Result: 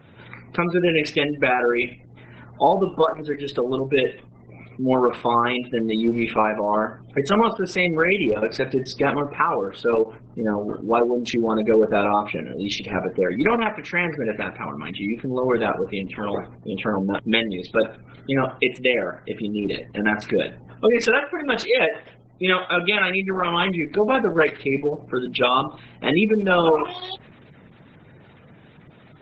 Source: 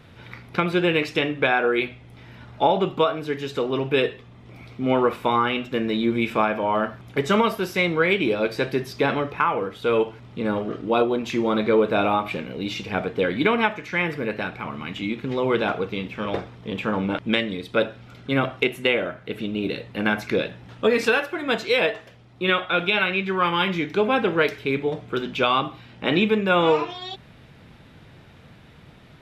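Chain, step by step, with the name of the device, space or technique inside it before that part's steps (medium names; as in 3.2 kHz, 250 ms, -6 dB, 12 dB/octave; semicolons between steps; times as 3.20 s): 2.84–3.50 s: high-pass 98 Hz 6 dB/octave; noise-suppressed video call (high-pass 110 Hz 12 dB/octave; spectral gate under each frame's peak -20 dB strong; trim +2 dB; Opus 12 kbps 48 kHz)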